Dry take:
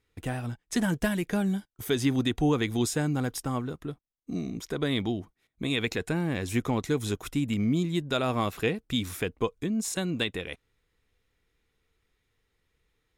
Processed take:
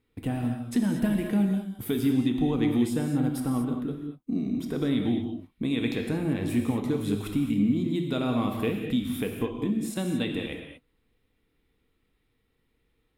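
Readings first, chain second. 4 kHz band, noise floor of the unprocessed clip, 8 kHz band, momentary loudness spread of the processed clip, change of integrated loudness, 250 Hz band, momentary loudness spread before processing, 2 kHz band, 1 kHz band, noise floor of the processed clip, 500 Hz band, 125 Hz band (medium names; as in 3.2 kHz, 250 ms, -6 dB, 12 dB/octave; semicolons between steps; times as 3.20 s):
-5.0 dB, -77 dBFS, -6.5 dB, 7 LU, +1.5 dB, +4.0 dB, 9 LU, -5.0 dB, -3.5 dB, -73 dBFS, -1.0 dB, +0.5 dB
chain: fifteen-band graphic EQ 250 Hz +10 dB, 1.6 kHz -4 dB, 6.3 kHz -12 dB; compression 2:1, threshold -28 dBFS, peak gain reduction 8.5 dB; gated-style reverb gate 260 ms flat, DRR 2.5 dB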